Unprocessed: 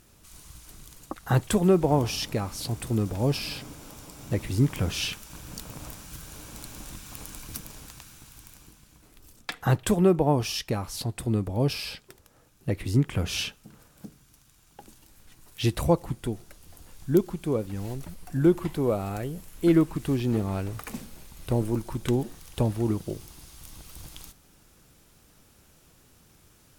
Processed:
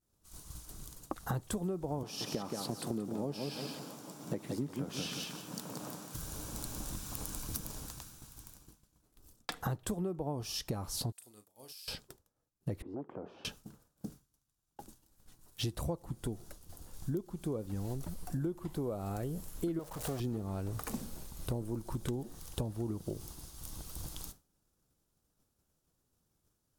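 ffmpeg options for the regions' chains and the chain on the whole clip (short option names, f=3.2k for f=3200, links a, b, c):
-filter_complex "[0:a]asettb=1/sr,asplit=3[a][b][c];[a]atrim=end=2.034[d];[b]atrim=start=2.03:end=6.15,asetpts=PTS-STARTPTS,afade=t=in:d=0.004:c=qsin,afade=t=out:st=4.116:d=0.004:c=qsin,highpass=f=160:w=0.5412,highpass=f=160:w=1.3066,highshelf=f=4.4k:g=-6.5,aecho=1:1:176|352|528|704:0.501|0.14|0.0393|0.011,atrim=end_sample=181692[e];[c]atrim=start=6.146[f];[d][e]acrossfade=d=0.004:c1=hsin:c2=qsin[g];[g][f]acrossfade=d=0.004:c1=qsin:c2=hsin,asettb=1/sr,asplit=3[h][i][j];[h]atrim=end=11.124[k];[i]atrim=start=11.12:end=11.88,asetpts=PTS-STARTPTS,afade=t=in:d=0.004:c=qsin,afade=t=out:st=0.756:d=0.004:c=qsin,aderivative,acompressor=threshold=-44dB:ratio=10:attack=3.2:release=140:knee=1:detection=peak,asplit=2[l][m];[m]adelay=38,volume=-9dB[n];[l][n]amix=inputs=2:normalize=0,atrim=end_sample=33516[o];[j]atrim=start=11.876[p];[k][o]acrossfade=d=0.004:c1=hsin:c2=qsin[q];[q][p]acrossfade=d=0.004:c1=qsin:c2=hsin,asettb=1/sr,asplit=3[r][s][t];[r]atrim=end=12.824[u];[s]atrim=start=12.82:end=13.45,asetpts=PTS-STARTPTS,afade=t=in:d=0.004:c=qsin,afade=t=out:st=0.626:d=0.004:c=qsin,aeval=exprs='0.168*(abs(mod(val(0)/0.168+3,4)-2)-1)':c=same,asuperpass=centerf=540:order=4:qfactor=0.71,acompressor=threshold=-40dB:ratio=4:attack=3.2:release=140:knee=1:detection=peak[v];[t]atrim=start=13.446[w];[u][v]acrossfade=d=0.004:c1=hsin:c2=qsin[x];[x][w]acrossfade=d=0.004:c1=qsin:c2=hsin,asettb=1/sr,asplit=3[y][z][aa];[y]atrim=end=19.794[ab];[z]atrim=start=19.79:end=20.2,asetpts=PTS-STARTPTS,afade=t=in:d=0.004:c=qsin,afade=t=out:st=0.406:d=0.004:c=qsin,aeval=exprs='val(0)+0.5*0.0282*sgn(val(0))':c=same,lowshelf=f=420:t=q:w=3:g=-7.5[ac];[aa]atrim=start=20.196[ad];[ab][ac]acrossfade=d=0.004:c1=hsin:c2=qsin[ae];[ae][ad]acrossfade=d=0.004:c1=qsin:c2=hsin,agate=range=-33dB:threshold=-44dB:ratio=3:detection=peak,equalizer=f=2.3k:t=o:w=1.1:g=-9,acompressor=threshold=-34dB:ratio=10,volume=1dB"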